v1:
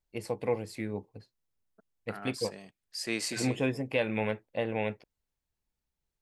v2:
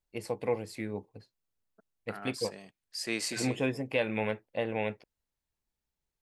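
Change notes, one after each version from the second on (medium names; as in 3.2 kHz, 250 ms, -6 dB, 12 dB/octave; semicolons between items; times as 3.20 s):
master: add bass shelf 210 Hz -3 dB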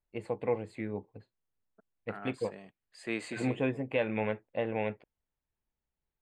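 master: add boxcar filter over 8 samples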